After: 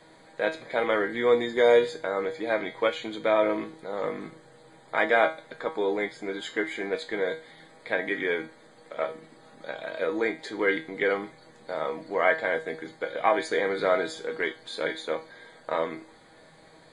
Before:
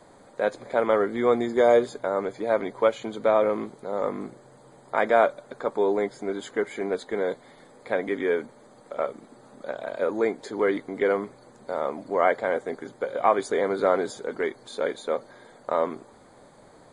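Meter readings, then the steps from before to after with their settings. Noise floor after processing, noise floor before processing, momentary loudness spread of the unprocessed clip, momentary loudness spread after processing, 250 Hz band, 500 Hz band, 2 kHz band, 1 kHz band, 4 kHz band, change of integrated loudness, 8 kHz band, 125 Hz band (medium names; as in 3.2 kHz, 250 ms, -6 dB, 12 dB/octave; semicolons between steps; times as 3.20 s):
-54 dBFS, -53 dBFS, 12 LU, 14 LU, -3.0 dB, -2.5 dB, +4.5 dB, -3.0 dB, +5.5 dB, -1.5 dB, no reading, -3.5 dB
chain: high-order bell 2.7 kHz +8.5 dB; feedback comb 160 Hz, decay 0.32 s, harmonics all, mix 80%; trim +6.5 dB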